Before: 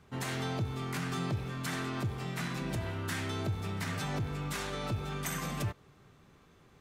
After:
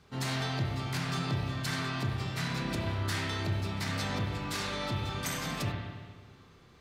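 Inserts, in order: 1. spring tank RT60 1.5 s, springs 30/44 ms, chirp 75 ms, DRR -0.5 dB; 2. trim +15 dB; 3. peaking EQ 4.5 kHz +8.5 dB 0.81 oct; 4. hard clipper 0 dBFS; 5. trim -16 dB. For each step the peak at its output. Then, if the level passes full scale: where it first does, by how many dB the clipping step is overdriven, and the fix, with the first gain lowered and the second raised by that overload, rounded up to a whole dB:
-20.0 dBFS, -5.0 dBFS, -4.5 dBFS, -4.5 dBFS, -20.5 dBFS; nothing clips

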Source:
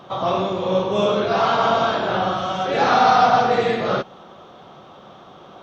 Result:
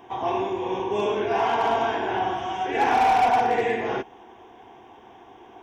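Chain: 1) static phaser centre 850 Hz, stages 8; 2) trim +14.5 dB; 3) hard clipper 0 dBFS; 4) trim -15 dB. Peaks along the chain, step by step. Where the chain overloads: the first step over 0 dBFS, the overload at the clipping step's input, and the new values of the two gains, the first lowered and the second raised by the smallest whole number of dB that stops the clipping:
-7.0 dBFS, +7.5 dBFS, 0.0 dBFS, -15.0 dBFS; step 2, 7.5 dB; step 2 +6.5 dB, step 4 -7 dB

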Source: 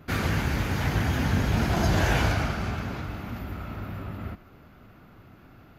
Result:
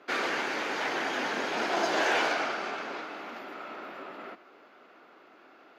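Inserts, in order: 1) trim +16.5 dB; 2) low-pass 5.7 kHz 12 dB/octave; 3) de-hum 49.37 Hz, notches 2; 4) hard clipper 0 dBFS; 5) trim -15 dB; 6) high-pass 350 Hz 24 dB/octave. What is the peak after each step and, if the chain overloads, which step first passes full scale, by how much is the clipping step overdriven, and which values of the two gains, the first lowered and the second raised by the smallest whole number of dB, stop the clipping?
+5.5 dBFS, +5.5 dBFS, +6.0 dBFS, 0.0 dBFS, -15.0 dBFS, -14.5 dBFS; step 1, 6.0 dB; step 1 +10.5 dB, step 5 -9 dB

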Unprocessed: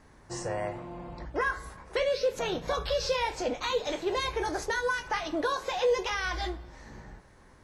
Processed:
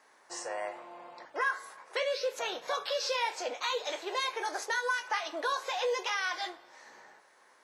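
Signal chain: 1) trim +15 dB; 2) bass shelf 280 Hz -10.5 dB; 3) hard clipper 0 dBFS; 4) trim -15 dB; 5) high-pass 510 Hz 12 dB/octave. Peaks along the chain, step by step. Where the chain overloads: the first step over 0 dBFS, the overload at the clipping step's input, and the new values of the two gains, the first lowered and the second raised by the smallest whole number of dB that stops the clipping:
-2.5 dBFS, -4.0 dBFS, -4.0 dBFS, -19.0 dBFS, -19.0 dBFS; nothing clips

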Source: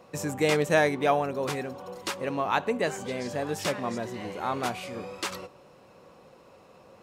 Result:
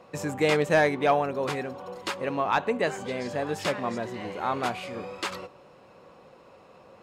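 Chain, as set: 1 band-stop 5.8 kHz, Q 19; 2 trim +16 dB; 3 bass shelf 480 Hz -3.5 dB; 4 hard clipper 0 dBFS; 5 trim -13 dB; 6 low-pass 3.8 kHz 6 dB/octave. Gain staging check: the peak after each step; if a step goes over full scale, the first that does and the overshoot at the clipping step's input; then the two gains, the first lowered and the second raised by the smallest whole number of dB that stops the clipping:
-10.0 dBFS, +6.0 dBFS, +6.0 dBFS, 0.0 dBFS, -13.0 dBFS, -13.0 dBFS; step 2, 6.0 dB; step 2 +10 dB, step 5 -7 dB

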